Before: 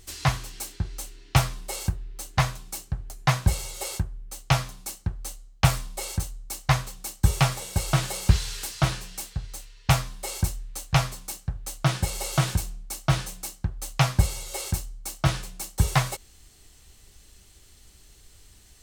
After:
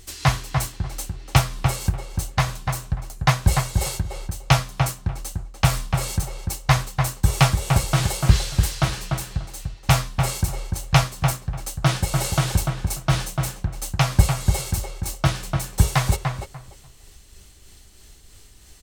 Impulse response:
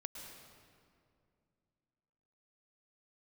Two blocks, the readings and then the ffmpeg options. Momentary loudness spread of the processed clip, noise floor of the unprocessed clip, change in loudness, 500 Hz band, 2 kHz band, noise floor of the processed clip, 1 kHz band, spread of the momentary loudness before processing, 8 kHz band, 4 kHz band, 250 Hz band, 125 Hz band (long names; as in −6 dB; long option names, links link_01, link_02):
10 LU, −54 dBFS, +4.5 dB, +4.5 dB, +4.0 dB, −48 dBFS, +4.5 dB, 11 LU, +3.5 dB, +4.0 dB, +5.0 dB, +5.0 dB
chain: -filter_complex "[0:a]tremolo=f=3.1:d=0.34,asplit=2[link_01][link_02];[link_02]adelay=294,lowpass=frequency=1900:poles=1,volume=-4dB,asplit=2[link_03][link_04];[link_04]adelay=294,lowpass=frequency=1900:poles=1,volume=0.2,asplit=2[link_05][link_06];[link_06]adelay=294,lowpass=frequency=1900:poles=1,volume=0.2[link_07];[link_03][link_05][link_07]amix=inputs=3:normalize=0[link_08];[link_01][link_08]amix=inputs=2:normalize=0,volume=5dB"